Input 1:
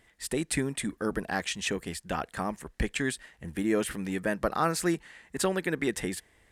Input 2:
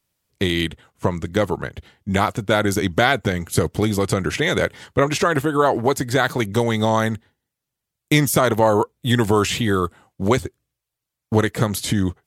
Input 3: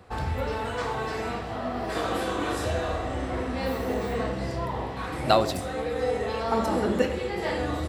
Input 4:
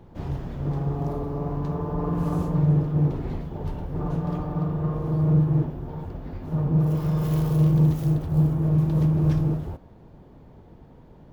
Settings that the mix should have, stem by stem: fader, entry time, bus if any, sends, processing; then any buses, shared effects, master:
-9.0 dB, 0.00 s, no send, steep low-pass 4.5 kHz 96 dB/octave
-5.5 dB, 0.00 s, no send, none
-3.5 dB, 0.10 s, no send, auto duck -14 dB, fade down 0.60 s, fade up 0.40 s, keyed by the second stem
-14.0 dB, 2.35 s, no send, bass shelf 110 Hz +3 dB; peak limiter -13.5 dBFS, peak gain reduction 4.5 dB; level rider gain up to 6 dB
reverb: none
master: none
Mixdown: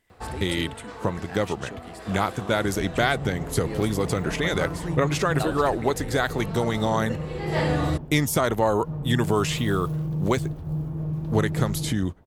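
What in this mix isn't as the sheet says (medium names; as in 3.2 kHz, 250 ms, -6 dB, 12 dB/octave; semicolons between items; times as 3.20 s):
stem 1: missing steep low-pass 4.5 kHz 96 dB/octave; stem 3 -3.5 dB -> +3.5 dB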